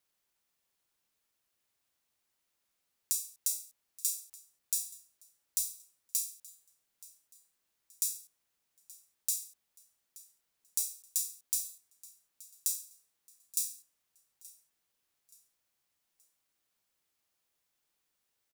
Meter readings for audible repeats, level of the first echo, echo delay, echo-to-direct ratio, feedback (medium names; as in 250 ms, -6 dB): 2, -21.0 dB, 876 ms, -20.5 dB, 39%